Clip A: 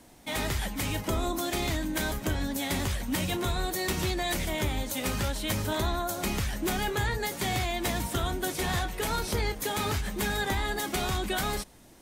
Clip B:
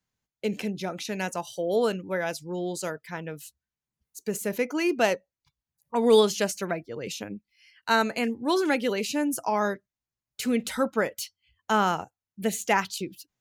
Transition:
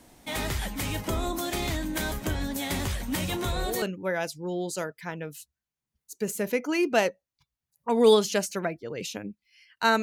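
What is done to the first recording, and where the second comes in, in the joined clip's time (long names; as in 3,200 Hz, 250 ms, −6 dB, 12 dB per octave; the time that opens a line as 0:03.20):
clip A
0:03.27: mix in clip B from 0:01.33 0.55 s −11 dB
0:03.82: continue with clip B from 0:01.88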